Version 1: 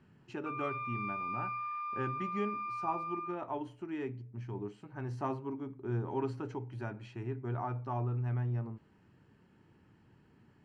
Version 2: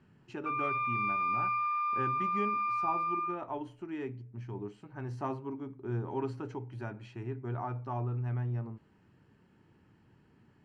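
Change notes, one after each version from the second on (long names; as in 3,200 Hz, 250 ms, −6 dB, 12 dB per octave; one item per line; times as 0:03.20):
background +7.0 dB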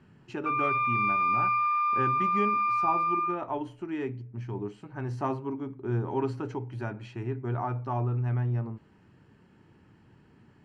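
speech +5.5 dB
background +5.5 dB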